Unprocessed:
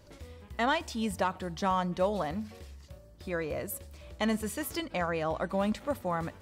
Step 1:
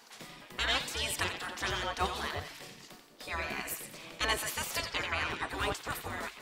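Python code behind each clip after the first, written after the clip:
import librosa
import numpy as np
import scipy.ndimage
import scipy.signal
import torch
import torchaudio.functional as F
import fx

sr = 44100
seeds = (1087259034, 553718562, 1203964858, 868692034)

y = fx.echo_banded(x, sr, ms=88, feedback_pct=55, hz=2800.0, wet_db=-5.5)
y = fx.spec_gate(y, sr, threshold_db=-15, keep='weak')
y = F.gain(torch.from_numpy(y), 8.5).numpy()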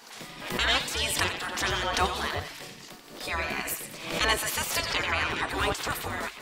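y = fx.pre_swell(x, sr, db_per_s=76.0)
y = F.gain(torch.from_numpy(y), 5.5).numpy()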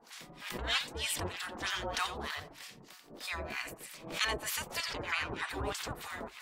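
y = fx.harmonic_tremolo(x, sr, hz=3.2, depth_pct=100, crossover_hz=960.0)
y = F.gain(torch.from_numpy(y), -3.5).numpy()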